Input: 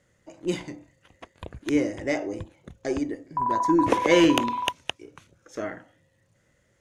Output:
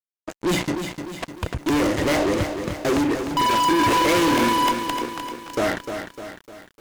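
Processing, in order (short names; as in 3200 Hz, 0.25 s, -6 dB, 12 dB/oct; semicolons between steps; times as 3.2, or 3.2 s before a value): fuzz box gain 37 dB, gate -43 dBFS; lo-fi delay 0.302 s, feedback 55%, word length 7-bit, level -7.5 dB; gain -5 dB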